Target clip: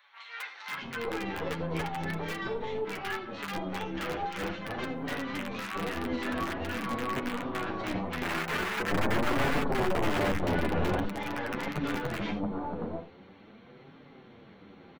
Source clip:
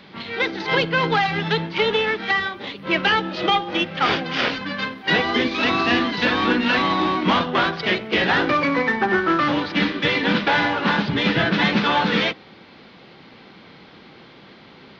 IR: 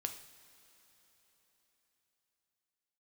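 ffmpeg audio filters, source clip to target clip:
-filter_complex "[0:a]equalizer=f=4.1k:t=o:w=2.2:g=-11.5,acompressor=threshold=-24dB:ratio=16,asuperstop=centerf=4900:order=12:qfactor=6.9,aeval=exprs='0.299*(cos(1*acos(clip(val(0)/0.299,-1,1)))-cos(1*PI/2))+0.00188*(cos(3*acos(clip(val(0)/0.299,-1,1)))-cos(3*PI/2))+0.133*(cos(4*acos(clip(val(0)/0.299,-1,1)))-cos(4*PI/2))+0.015*(cos(6*acos(clip(val(0)/0.299,-1,1)))-cos(6*PI/2))':c=same,asettb=1/sr,asplit=3[a][b][c];[a]atrim=end=8.234[d];[b]atrim=start=8.23:end=10.31,asetpts=PTS-STARTPTS,afade=t=in:d=0.004:c=qsin,afade=t=out:st=2.076:d=0.004:c=qsin,aemphasis=mode=reproduction:type=riaa[e];[c]atrim=start=10.306[f];[d][e]acrossfade=d=0.004:c1=hsin:c2=qsin[g];[g][f]acrossfade=d=0.004:c1=qsin:c2=hsin[h];[1:a]atrim=start_sample=2205,atrim=end_sample=4410[i];[h][i]afir=irnorm=-1:irlink=0,aeval=exprs='(mod(7.08*val(0)+1,2)-1)/7.08':c=same,acrossover=split=2700[j][k];[k]acompressor=threshold=-38dB:ratio=4:attack=1:release=60[l];[j][l]amix=inputs=2:normalize=0,flanger=delay=6.7:depth=5.8:regen=19:speed=0.45:shape=triangular,acrossover=split=1000[m][n];[m]adelay=680[o];[o][n]amix=inputs=2:normalize=0"

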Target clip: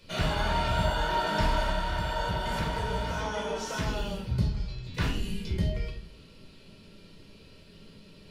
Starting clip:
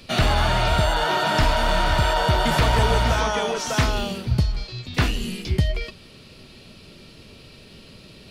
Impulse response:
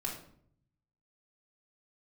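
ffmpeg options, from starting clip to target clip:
-filter_complex "[0:a]asettb=1/sr,asplit=3[a][b][c];[a]atrim=end=1.694[d];[b]atrim=start=1.69:end=3.87,asetpts=PTS-STARTPTS,afade=t=in:d=0.004:c=qsin,afade=t=out:st=2.176:d=0.004:c=qsin,acompressor=threshold=-19dB:ratio=6[e];[c]atrim=start=3.866[f];[d][e]acrossfade=d=0.004:c1=hsin:c2=qsin[g];[g][f]acrossfade=d=0.004:c1=qsin:c2=hsin[h];[1:a]atrim=start_sample=2205,asetrate=57330,aresample=44100[i];[h][i]afir=irnorm=-1:irlink=0,volume=-8dB"

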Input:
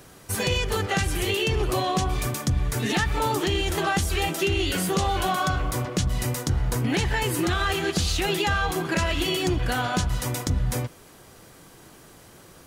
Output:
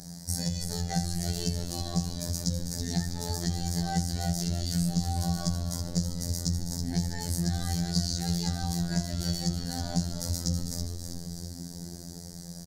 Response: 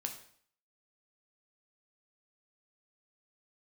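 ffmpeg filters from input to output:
-filter_complex "[0:a]firequalizer=gain_entry='entry(110,0);entry(180,13);entry(300,-11);entry(490,-11);entry(700,-3);entry(1200,-21);entry(1800,-9);entry(2700,-26);entry(4600,8);entry(11000,-2)':delay=0.05:min_phase=1,acompressor=threshold=-34dB:ratio=3,asplit=8[a][b][c][d][e][f][g][h];[b]adelay=325,afreqshift=-100,volume=-7dB[i];[c]adelay=650,afreqshift=-200,volume=-12.2dB[j];[d]adelay=975,afreqshift=-300,volume=-17.4dB[k];[e]adelay=1300,afreqshift=-400,volume=-22.6dB[l];[f]adelay=1625,afreqshift=-500,volume=-27.8dB[m];[g]adelay=1950,afreqshift=-600,volume=-33dB[n];[h]adelay=2275,afreqshift=-700,volume=-38.2dB[o];[a][i][j][k][l][m][n][o]amix=inputs=8:normalize=0,asplit=2[p][q];[1:a]atrim=start_sample=2205[r];[q][r]afir=irnorm=-1:irlink=0,volume=2dB[s];[p][s]amix=inputs=2:normalize=0,afftfilt=real='hypot(re,im)*cos(PI*b)':imag='0':win_size=2048:overlap=0.75"

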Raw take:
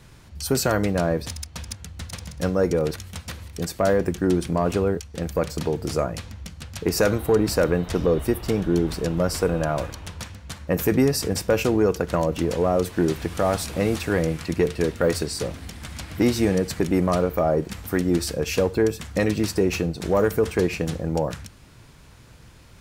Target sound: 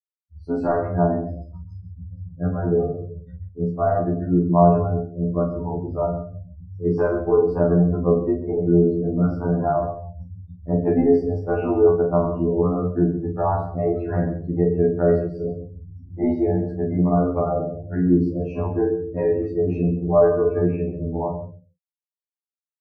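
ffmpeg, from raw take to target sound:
-filter_complex "[0:a]agate=range=-33dB:threshold=-39dB:ratio=3:detection=peak,asplit=2[a][b];[b]aecho=0:1:40|92|159.6|247.5|361.7:0.631|0.398|0.251|0.158|0.1[c];[a][c]amix=inputs=2:normalize=0,afftfilt=real='re*gte(hypot(re,im),0.0708)':imag='im*gte(hypot(re,im),0.0708)':win_size=1024:overlap=0.75,lowpass=f=910:t=q:w=1.7,bandreject=f=510:w=12,asplit=2[d][e];[e]adelay=33,volume=-7.5dB[f];[d][f]amix=inputs=2:normalize=0,asplit=2[g][h];[h]aecho=0:1:133:0.178[i];[g][i]amix=inputs=2:normalize=0,afftfilt=real='re*2*eq(mod(b,4),0)':imag='im*2*eq(mod(b,4),0)':win_size=2048:overlap=0.75"

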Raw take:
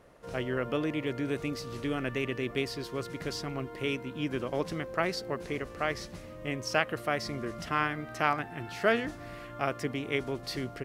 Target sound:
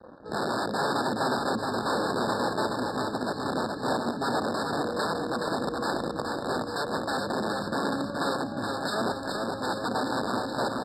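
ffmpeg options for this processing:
-filter_complex "[0:a]aemphasis=mode=reproduction:type=riaa,aecho=1:1:3.4:0.62,adynamicequalizer=threshold=0.0112:dfrequency=340:dqfactor=2.7:tfrequency=340:tqfactor=2.7:attack=5:release=100:ratio=0.375:range=2:mode=cutabove:tftype=bell,acrossover=split=1100[a][b];[a]aeval=exprs='(mod(15.8*val(0)+1,2)-1)/15.8':c=same[c];[b]acompressor=threshold=-48dB:ratio=6[d];[c][d]amix=inputs=2:normalize=0,asetrate=40440,aresample=44100,atempo=1.09051,asplit=2[e][f];[f]asoftclip=type=hard:threshold=-35dB,volume=-5dB[g];[e][g]amix=inputs=2:normalize=0,acrusher=bits=6:mix=0:aa=0.5,highpass=200,lowpass=7.2k,aecho=1:1:422|844|1266|1688|2110|2532|2954:0.668|0.361|0.195|0.105|0.0568|0.0307|0.0166,afftfilt=real='re*eq(mod(floor(b*sr/1024/1800),2),0)':imag='im*eq(mod(floor(b*sr/1024/1800),2),0)':win_size=1024:overlap=0.75"

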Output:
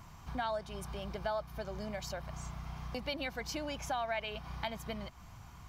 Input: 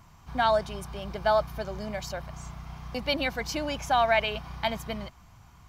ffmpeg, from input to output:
-af "acompressor=threshold=-42dB:ratio=2.5,volume=1.5dB"

